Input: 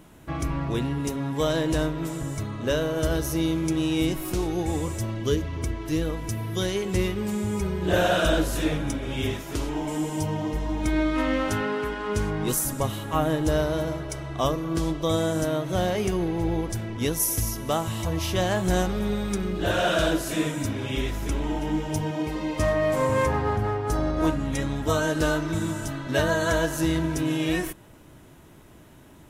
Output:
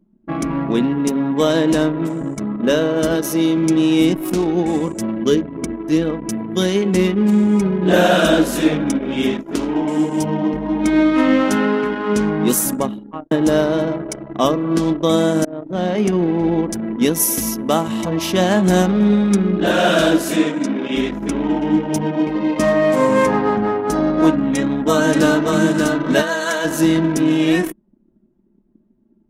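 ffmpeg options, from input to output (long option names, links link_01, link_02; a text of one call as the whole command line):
ffmpeg -i in.wav -filter_complex "[0:a]asettb=1/sr,asplit=3[link_01][link_02][link_03];[link_01]atrim=end=3.154[link_04];[link_02]atrim=start=3.15:end=3.57,asetpts=PTS-STARTPTS,afade=type=in:duration=0.004:curve=qsin,afade=type=out:start_time=0.416:duration=0.004:curve=qsin,highpass=frequency=190:poles=1[link_05];[link_03]atrim=start=3.566[link_06];[link_04][link_05]acrossfade=duration=0.004:curve1=hsin:curve2=qsin[link_07];[link_07][link_06]acrossfade=duration=0.004:curve1=qsin:curve2=hsin,asettb=1/sr,asplit=3[link_08][link_09][link_10];[link_08]atrim=end=20.364[link_11];[link_09]atrim=start=20.36:end=20.96,asetpts=PTS-STARTPTS,afade=type=in:duration=0.004:curve=qsin,afade=type=out:start_time=0.596:duration=0.004:curve=qsin,highpass=210,lowpass=7400[link_12];[link_10]atrim=start=20.956[link_13];[link_11][link_12]acrossfade=duration=0.004:curve1=hsin:curve2=qsin[link_14];[link_14][link_13]acrossfade=duration=0.004:curve1=qsin:curve2=hsin,asplit=2[link_15][link_16];[link_16]afade=type=in:start_time=24.4:duration=0.01,afade=type=out:start_time=25.56:duration=0.01,aecho=0:1:580|1160|1740:0.668344|0.133669|0.0267338[link_17];[link_15][link_17]amix=inputs=2:normalize=0,asplit=3[link_18][link_19][link_20];[link_18]afade=type=out:start_time=26.21:duration=0.02[link_21];[link_19]highpass=frequency=1100:poles=1,afade=type=in:start_time=26.21:duration=0.02,afade=type=out:start_time=26.64:duration=0.02[link_22];[link_20]afade=type=in:start_time=26.64:duration=0.02[link_23];[link_21][link_22][link_23]amix=inputs=3:normalize=0,asplit=3[link_24][link_25][link_26];[link_24]atrim=end=13.31,asetpts=PTS-STARTPTS,afade=type=out:start_time=12.73:duration=0.58[link_27];[link_25]atrim=start=13.31:end=15.45,asetpts=PTS-STARTPTS,afade=type=in:duration=0.004:curve=hsin,afade=type=out:start_time=2.136:duration=0.004:curve=hsin:silence=0.199526[link_28];[link_26]atrim=start=15.45,asetpts=PTS-STARTPTS,afade=type=in:duration=1.1:curve=qsin:silence=0.199526[link_29];[link_27][link_28][link_29]concat=n=3:v=0:a=1,lowshelf=frequency=140:width_type=q:width=3:gain=-13.5,anlmdn=10,volume=7.5dB" out.wav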